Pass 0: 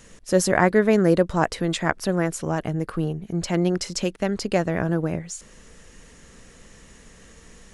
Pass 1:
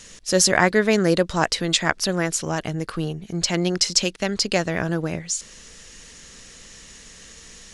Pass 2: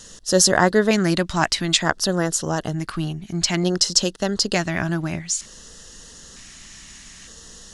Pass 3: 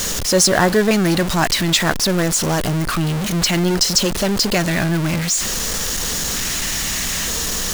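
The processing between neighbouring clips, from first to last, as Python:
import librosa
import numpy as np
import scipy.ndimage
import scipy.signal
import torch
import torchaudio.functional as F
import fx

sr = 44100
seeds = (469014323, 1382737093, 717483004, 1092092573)

y1 = fx.peak_eq(x, sr, hz=4800.0, db=13.5, octaves=2.3)
y1 = y1 * librosa.db_to_amplitude(-1.5)
y2 = fx.filter_lfo_notch(y1, sr, shape='square', hz=0.55, low_hz=480.0, high_hz=2300.0, q=1.7)
y2 = y2 * librosa.db_to_amplitude(2.0)
y3 = y2 + 0.5 * 10.0 ** (-15.5 / 20.0) * np.sign(y2)
y3 = y3 * librosa.db_to_amplitude(-1.0)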